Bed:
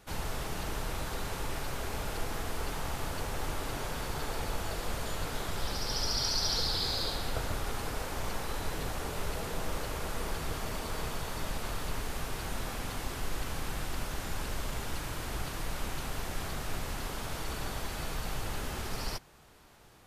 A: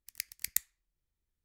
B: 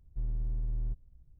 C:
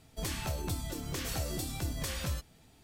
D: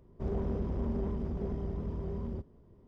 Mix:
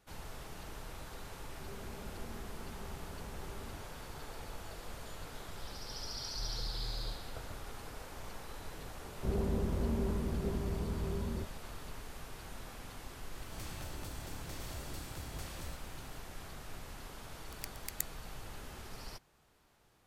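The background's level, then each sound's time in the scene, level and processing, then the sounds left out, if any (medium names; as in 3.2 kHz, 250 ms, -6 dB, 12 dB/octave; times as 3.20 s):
bed -11 dB
1.40 s: add D -8 dB + compression, threshold -38 dBFS
6.20 s: add B -8.5 dB
9.03 s: add D -0.5 dB
13.35 s: add C -15.5 dB + spectral levelling over time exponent 0.4
17.44 s: add A -7 dB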